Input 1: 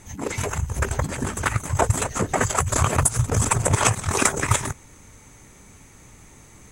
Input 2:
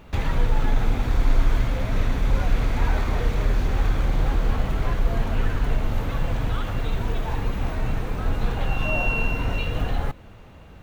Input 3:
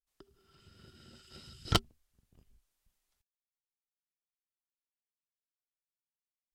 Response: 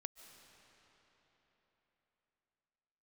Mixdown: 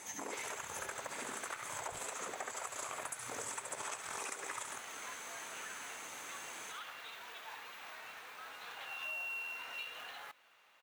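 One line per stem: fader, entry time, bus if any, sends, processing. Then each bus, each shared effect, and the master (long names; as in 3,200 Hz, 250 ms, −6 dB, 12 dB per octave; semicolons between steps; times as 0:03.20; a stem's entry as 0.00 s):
+0.5 dB, 0.00 s, bus A, no send, echo send −5.5 dB, high-pass filter 510 Hz 12 dB per octave; downward compressor 2 to 1, threshold −37 dBFS, peak gain reduction 12.5 dB
−8.5 dB, 0.20 s, no bus, no send, no echo send, high-pass filter 1,300 Hz 12 dB per octave; floating-point word with a short mantissa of 2 bits
−14.0 dB, 0.20 s, bus A, no send, no echo send, no processing
bus A: 0.0 dB, downward compressor, threshold −40 dBFS, peak gain reduction 14.5 dB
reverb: not used
echo: repeating echo 68 ms, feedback 29%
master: downward compressor 6 to 1, threshold −39 dBFS, peak gain reduction 9.5 dB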